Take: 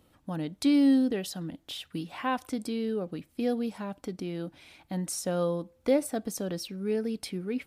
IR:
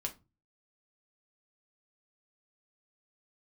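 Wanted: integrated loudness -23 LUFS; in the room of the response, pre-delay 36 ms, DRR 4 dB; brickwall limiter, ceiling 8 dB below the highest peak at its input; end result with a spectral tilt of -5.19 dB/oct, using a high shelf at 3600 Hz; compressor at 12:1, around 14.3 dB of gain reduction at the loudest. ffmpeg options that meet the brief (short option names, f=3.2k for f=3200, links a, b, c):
-filter_complex "[0:a]highshelf=f=3.6k:g=-5.5,acompressor=threshold=-34dB:ratio=12,alimiter=level_in=8dB:limit=-24dB:level=0:latency=1,volume=-8dB,asplit=2[a][b];[1:a]atrim=start_sample=2205,adelay=36[c];[b][c]afir=irnorm=-1:irlink=0,volume=-4.5dB[d];[a][d]amix=inputs=2:normalize=0,volume=16.5dB"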